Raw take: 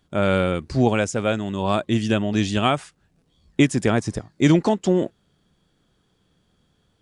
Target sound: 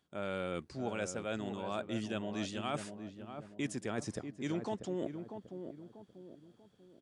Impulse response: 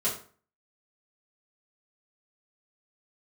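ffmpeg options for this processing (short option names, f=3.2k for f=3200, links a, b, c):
-filter_complex "[0:a]highpass=f=210:p=1,areverse,acompressor=threshold=-29dB:ratio=5,areverse,asplit=2[a][b];[b]adelay=640,lowpass=f=910:p=1,volume=-7dB,asplit=2[c][d];[d]adelay=640,lowpass=f=910:p=1,volume=0.43,asplit=2[e][f];[f]adelay=640,lowpass=f=910:p=1,volume=0.43,asplit=2[g][h];[h]adelay=640,lowpass=f=910:p=1,volume=0.43,asplit=2[i][j];[j]adelay=640,lowpass=f=910:p=1,volume=0.43[k];[a][c][e][g][i][k]amix=inputs=6:normalize=0,volume=-6dB"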